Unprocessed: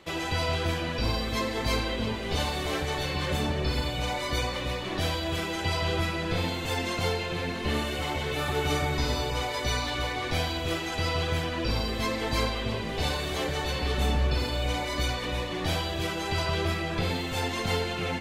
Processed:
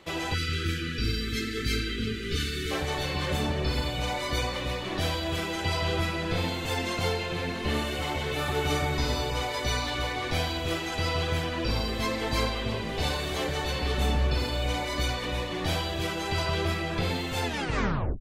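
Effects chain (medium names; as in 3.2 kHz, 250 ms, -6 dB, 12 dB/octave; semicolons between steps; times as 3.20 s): tape stop on the ending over 0.76 s; spectral selection erased 0.34–2.71 s, 490–1200 Hz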